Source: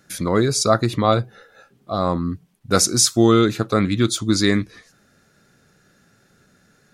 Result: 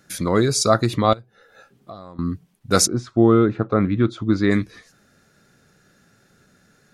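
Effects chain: 1.13–2.19 s: compression 16:1, threshold -35 dBFS, peak gain reduction 21 dB; 2.86–4.50 s: low-pass 1.1 kHz -> 1.9 kHz 12 dB/octave

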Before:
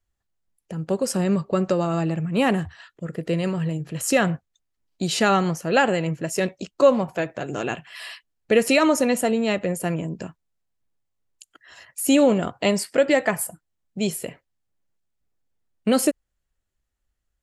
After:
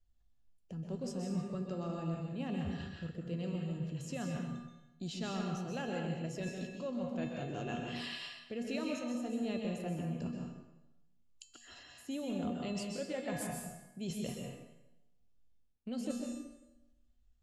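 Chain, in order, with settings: tilt EQ -3 dB/octave; feedback comb 240 Hz, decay 0.51 s, harmonics odd, mix 80%; reverse; compression 6:1, threshold -43 dBFS, peak gain reduction 21 dB; reverse; high-order bell 4.5 kHz +9.5 dB; reverberation RT60 0.95 s, pre-delay 118 ms, DRR 0.5 dB; trim +4 dB

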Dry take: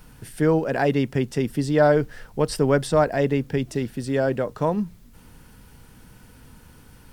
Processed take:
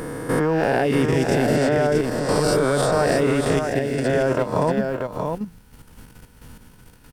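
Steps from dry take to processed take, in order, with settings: reverse spectral sustain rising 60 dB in 1.52 s; level held to a coarse grid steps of 11 dB; delay 634 ms -5 dB; trim +2.5 dB

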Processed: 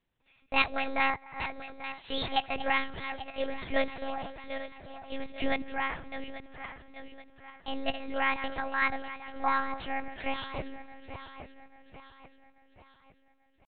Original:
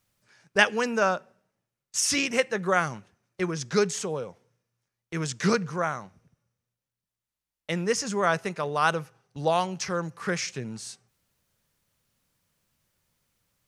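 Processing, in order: backward echo that repeats 418 ms, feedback 66%, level -10 dB; feedback echo behind a band-pass 260 ms, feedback 55%, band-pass 780 Hz, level -23 dB; pitch shift +7 st; monotone LPC vocoder at 8 kHz 270 Hz; trim -4 dB

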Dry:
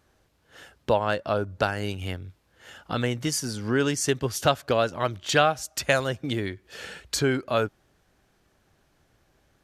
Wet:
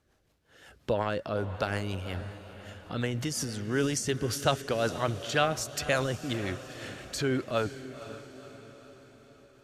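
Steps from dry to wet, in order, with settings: transient shaper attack 0 dB, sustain +8 dB; rotary cabinet horn 5.5 Hz; echo that smears into a reverb 503 ms, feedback 54%, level -13 dB; trim -3.5 dB

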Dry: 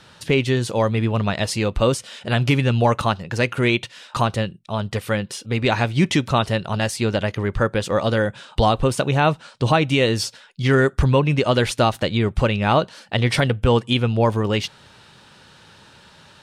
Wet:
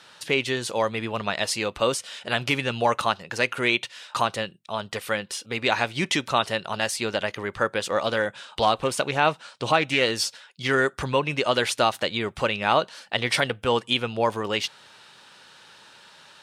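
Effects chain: high-pass 700 Hz 6 dB/octave; 7.91–10.11 s: loudspeaker Doppler distortion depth 0.12 ms

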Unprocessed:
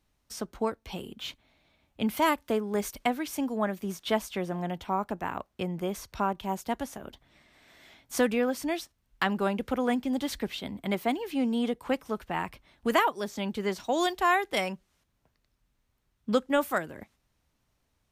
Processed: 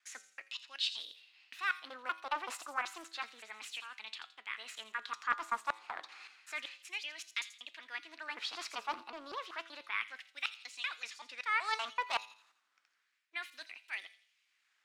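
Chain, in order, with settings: slices played last to first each 232 ms, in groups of 2; peaking EQ 240 Hz +6 dB 0.87 oct; reverse; compression 6:1, threshold -33 dBFS, peak gain reduction 15.5 dB; reverse; LFO high-pass sine 0.25 Hz 890–2300 Hz; tape speed +22%; distance through air 68 m; feedback comb 110 Hz, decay 0.56 s, harmonics all, mix 50%; feedback echo behind a high-pass 84 ms, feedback 39%, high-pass 4.3 kHz, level -8 dB; loudspeaker Doppler distortion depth 0.28 ms; trim +8 dB

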